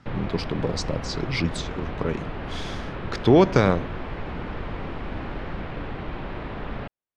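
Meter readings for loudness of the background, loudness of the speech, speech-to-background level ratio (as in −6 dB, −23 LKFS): −34.0 LKFS, −24.0 LKFS, 10.0 dB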